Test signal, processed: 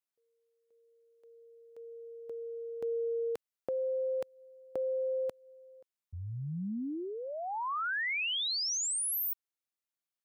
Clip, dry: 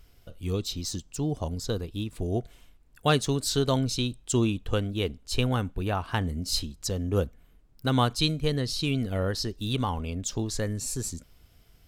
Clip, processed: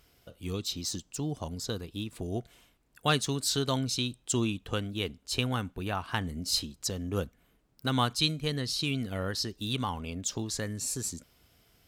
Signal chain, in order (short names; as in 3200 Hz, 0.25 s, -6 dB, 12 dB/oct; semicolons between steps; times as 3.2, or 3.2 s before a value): HPF 180 Hz 6 dB/oct; dynamic EQ 500 Hz, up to -6 dB, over -40 dBFS, Q 0.85